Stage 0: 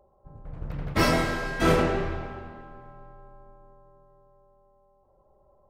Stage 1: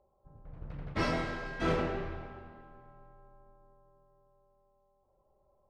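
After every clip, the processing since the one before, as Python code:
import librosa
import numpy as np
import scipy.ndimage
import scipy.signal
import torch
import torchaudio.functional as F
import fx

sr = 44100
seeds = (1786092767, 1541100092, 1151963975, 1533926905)

y = scipy.signal.sosfilt(scipy.signal.butter(2, 5000.0, 'lowpass', fs=sr, output='sos'), x)
y = y * 10.0 ** (-9.0 / 20.0)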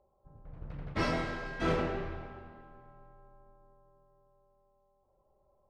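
y = x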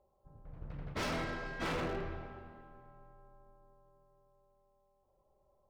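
y = 10.0 ** (-28.5 / 20.0) * (np.abs((x / 10.0 ** (-28.5 / 20.0) + 3.0) % 4.0 - 2.0) - 1.0)
y = y * 10.0 ** (-2.0 / 20.0)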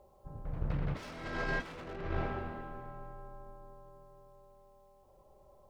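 y = fx.over_compress(x, sr, threshold_db=-43.0, ratio=-0.5)
y = y * 10.0 ** (7.5 / 20.0)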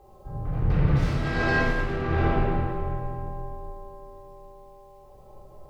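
y = fx.room_shoebox(x, sr, seeds[0], volume_m3=1300.0, walls='mixed', distance_m=3.7)
y = y * 10.0 ** (4.5 / 20.0)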